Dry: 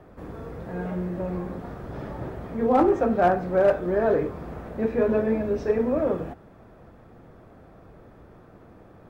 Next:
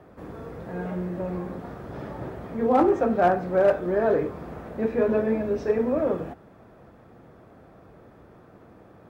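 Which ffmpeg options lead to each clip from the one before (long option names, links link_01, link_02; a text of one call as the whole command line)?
ffmpeg -i in.wav -af "highpass=frequency=92:poles=1" out.wav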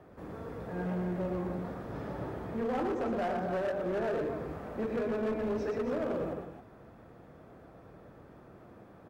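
ffmpeg -i in.wav -filter_complex "[0:a]acompressor=threshold=-23dB:ratio=12,asplit=2[link_01][link_02];[link_02]aecho=0:1:116.6|268.2:0.562|0.398[link_03];[link_01][link_03]amix=inputs=2:normalize=0,asoftclip=type=hard:threshold=-24dB,volume=-4.5dB" out.wav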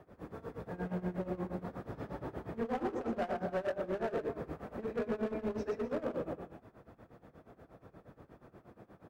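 ffmpeg -i in.wav -af "tremolo=f=8.4:d=0.88" out.wav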